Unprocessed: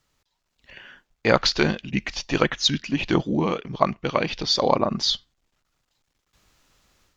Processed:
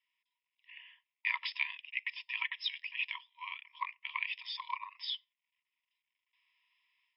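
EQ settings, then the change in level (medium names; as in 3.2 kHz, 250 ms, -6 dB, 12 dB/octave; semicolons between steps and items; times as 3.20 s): brick-wall FIR band-pass 940–5400 Hz; Butterworth band-stop 1.5 kHz, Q 1.8; static phaser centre 1.2 kHz, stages 6; -3.0 dB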